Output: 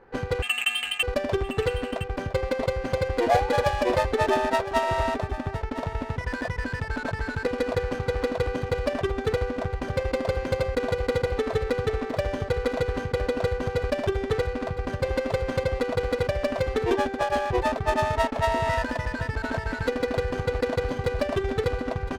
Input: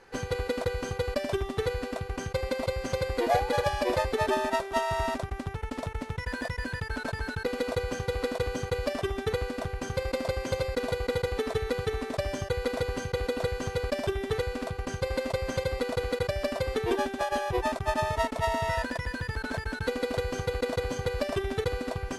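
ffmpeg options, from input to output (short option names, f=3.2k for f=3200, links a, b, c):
-filter_complex "[0:a]asettb=1/sr,asplit=3[a][b][c];[a]atrim=end=0.424[d];[b]atrim=start=0.42:end=1.03,asetpts=PTS-STARTPTS,afade=t=in:d=0.004:c=qsin,afade=t=out:st=0.606:d=0.004:c=qsin,lowpass=f=2.7k:t=q:w=0.5098,lowpass=f=2.7k:t=q:w=0.6013,lowpass=f=2.7k:t=q:w=0.9,lowpass=f=2.7k:t=q:w=2.563,afreqshift=-3200[e];[c]atrim=start=1.026[f];[d][e]acrossfade=d=0.004:c1=hsin:c2=qsin[g];[g][f]acrossfade=d=0.004:c1=qsin:c2=hsin,adynamicsmooth=sensitivity=7.5:basefreq=1.3k,aecho=1:1:1011:0.188,volume=4dB"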